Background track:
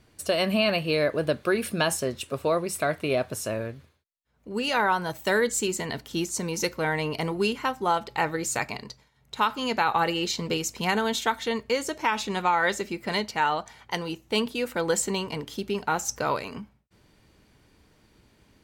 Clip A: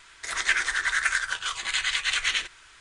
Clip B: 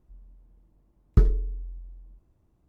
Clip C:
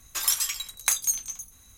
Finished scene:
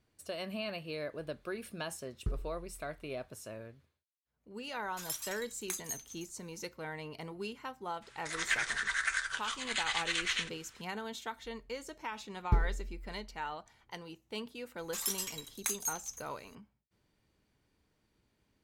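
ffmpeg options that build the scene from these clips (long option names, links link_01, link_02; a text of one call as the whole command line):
ffmpeg -i bed.wav -i cue0.wav -i cue1.wav -i cue2.wav -filter_complex "[2:a]asplit=2[link_01][link_02];[3:a]asplit=2[link_03][link_04];[0:a]volume=-15.5dB[link_05];[link_01]atrim=end=2.68,asetpts=PTS-STARTPTS,volume=-17.5dB,afade=type=in:duration=0.004:curve=hsin,afade=type=out:start_time=2.676:duration=0.004:curve=hsin,adelay=1090[link_06];[link_03]atrim=end=1.77,asetpts=PTS-STARTPTS,volume=-15.5dB,afade=type=in:duration=0.004:curve=hsin,afade=type=out:start_time=1.766:duration=0.004:curve=hsin,adelay=4820[link_07];[1:a]atrim=end=2.8,asetpts=PTS-STARTPTS,volume=-8dB,afade=type=in:duration=0.004:curve=hsin,afade=type=out:start_time=2.796:duration=0.004:curve=hsin,adelay=353682S[link_08];[link_02]atrim=end=2.68,asetpts=PTS-STARTPTS,volume=-9.5dB,afade=type=in:duration=0.004:curve=hsin,afade=type=out:start_time=2.676:duration=0.004:curve=hsin,adelay=11350[link_09];[link_04]atrim=end=1.77,asetpts=PTS-STARTPTS,volume=-11dB,afade=type=in:duration=0.004:curve=hsin,afade=type=out:start_time=1.766:duration=0.004:curve=hsin,adelay=14780[link_10];[link_05][link_06][link_07][link_08][link_09][link_10]amix=inputs=6:normalize=0" out.wav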